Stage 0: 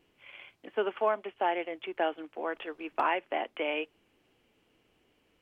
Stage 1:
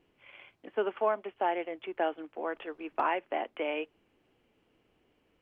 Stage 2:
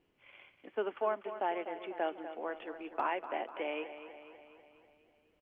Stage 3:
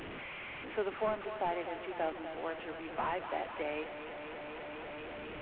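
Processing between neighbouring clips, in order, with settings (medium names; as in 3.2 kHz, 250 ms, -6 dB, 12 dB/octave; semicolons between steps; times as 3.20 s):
treble shelf 2.9 kHz -9 dB
feedback delay 246 ms, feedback 58%, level -11.5 dB; trim -4.5 dB
one-bit delta coder 16 kbps, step -38 dBFS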